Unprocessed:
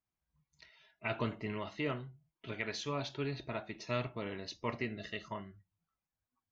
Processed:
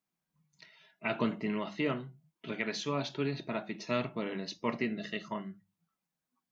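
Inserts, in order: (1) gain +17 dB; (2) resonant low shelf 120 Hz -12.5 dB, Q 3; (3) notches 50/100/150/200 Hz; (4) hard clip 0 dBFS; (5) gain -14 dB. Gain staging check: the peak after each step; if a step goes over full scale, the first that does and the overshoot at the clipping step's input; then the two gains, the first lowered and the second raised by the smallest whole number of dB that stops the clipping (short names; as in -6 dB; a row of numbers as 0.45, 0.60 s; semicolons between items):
-5.0, -4.0, -3.5, -3.5, -17.5 dBFS; no overload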